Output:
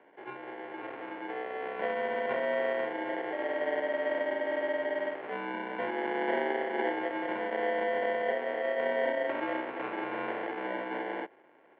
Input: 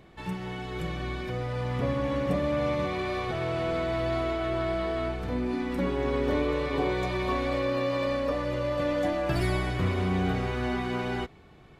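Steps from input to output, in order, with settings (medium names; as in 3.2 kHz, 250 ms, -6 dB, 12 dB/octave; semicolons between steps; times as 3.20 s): sample-rate reducer 1.3 kHz, jitter 0%; mistuned SSB -52 Hz 420–2600 Hz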